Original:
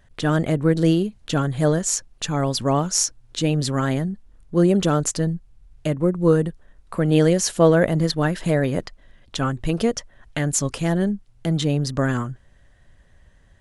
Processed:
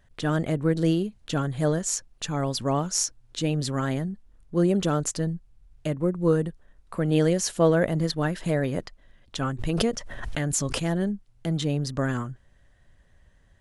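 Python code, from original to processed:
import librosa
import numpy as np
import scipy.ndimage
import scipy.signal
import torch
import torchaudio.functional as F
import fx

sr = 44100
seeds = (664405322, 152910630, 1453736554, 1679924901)

y = fx.pre_swell(x, sr, db_per_s=32.0, at=(9.58, 10.78), fade=0.02)
y = y * librosa.db_to_amplitude(-5.0)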